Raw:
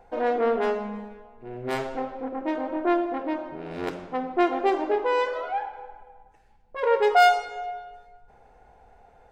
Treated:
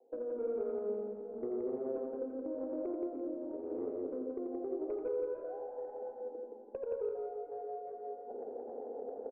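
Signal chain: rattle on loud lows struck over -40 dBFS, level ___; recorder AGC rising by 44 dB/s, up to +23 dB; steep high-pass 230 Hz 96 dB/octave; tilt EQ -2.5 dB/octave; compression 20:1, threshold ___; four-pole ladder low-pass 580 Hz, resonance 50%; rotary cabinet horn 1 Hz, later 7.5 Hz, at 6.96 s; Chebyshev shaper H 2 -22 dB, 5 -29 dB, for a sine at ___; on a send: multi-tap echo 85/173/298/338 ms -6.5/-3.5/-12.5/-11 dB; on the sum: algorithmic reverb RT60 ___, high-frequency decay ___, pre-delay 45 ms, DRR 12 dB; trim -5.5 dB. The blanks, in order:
-21 dBFS, -25 dBFS, -23 dBFS, 2.4 s, 0.9×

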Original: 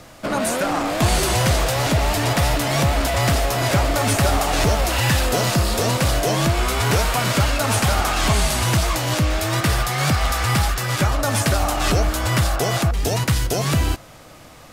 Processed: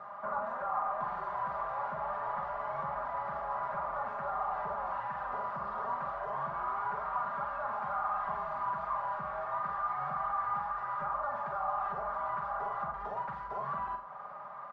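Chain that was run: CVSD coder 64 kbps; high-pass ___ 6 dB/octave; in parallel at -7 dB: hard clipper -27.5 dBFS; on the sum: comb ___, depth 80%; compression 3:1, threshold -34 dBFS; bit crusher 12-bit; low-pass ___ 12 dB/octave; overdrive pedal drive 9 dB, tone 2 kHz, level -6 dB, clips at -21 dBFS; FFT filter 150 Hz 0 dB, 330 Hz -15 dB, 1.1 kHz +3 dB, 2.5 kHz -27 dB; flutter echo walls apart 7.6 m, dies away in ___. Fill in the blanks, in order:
1.1 kHz, 5 ms, 2.8 kHz, 0.41 s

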